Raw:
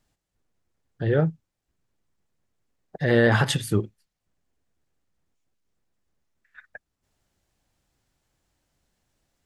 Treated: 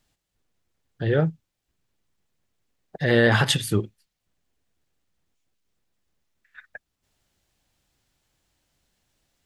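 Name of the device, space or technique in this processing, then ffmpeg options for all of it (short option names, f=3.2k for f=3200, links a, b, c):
presence and air boost: -af "equalizer=f=3.3k:t=o:w=1.5:g=5,highshelf=f=9.7k:g=5.5"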